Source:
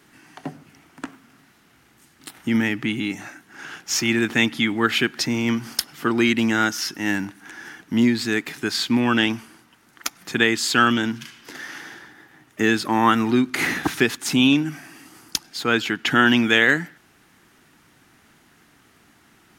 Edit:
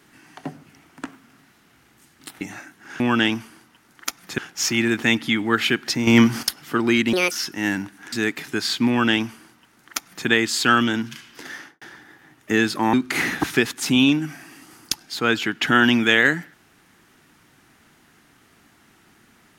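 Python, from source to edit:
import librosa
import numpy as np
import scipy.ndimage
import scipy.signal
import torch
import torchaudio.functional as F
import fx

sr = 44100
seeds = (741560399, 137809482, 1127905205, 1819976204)

y = fx.studio_fade_out(x, sr, start_s=11.63, length_s=0.28)
y = fx.edit(y, sr, fx.cut(start_s=2.41, length_s=0.69),
    fx.clip_gain(start_s=5.38, length_s=0.36, db=8.5),
    fx.speed_span(start_s=6.44, length_s=0.3, speed=1.63),
    fx.cut(start_s=7.55, length_s=0.67),
    fx.duplicate(start_s=8.98, length_s=1.38, to_s=3.69),
    fx.cut(start_s=13.03, length_s=0.34), tone=tone)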